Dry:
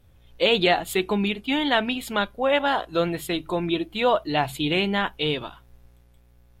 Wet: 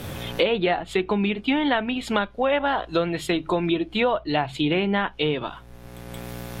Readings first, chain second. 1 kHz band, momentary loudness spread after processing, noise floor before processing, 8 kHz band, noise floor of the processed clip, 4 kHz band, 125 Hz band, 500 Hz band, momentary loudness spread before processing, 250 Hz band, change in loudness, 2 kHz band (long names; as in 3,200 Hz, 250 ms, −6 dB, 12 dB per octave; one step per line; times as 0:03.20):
−0.5 dB, 14 LU, −56 dBFS, −3.0 dB, −45 dBFS, −3.0 dB, +2.0 dB, +0.5 dB, 6 LU, +2.0 dB, 0.0 dB, −1.0 dB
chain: treble cut that deepens with the level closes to 2,500 Hz, closed at −19.5 dBFS
multiband upward and downward compressor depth 100%